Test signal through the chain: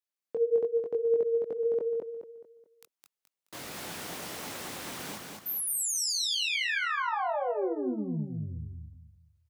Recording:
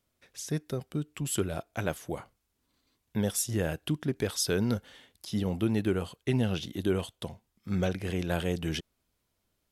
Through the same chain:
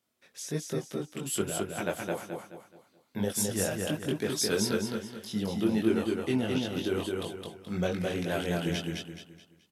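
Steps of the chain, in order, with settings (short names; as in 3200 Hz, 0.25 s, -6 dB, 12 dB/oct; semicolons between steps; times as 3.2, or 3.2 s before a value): HPF 170 Hz 12 dB/oct; chorus voices 4, 1.2 Hz, delay 21 ms, depth 3 ms; on a send: feedback echo 0.213 s, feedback 36%, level -3 dB; on the sum: gain +3 dB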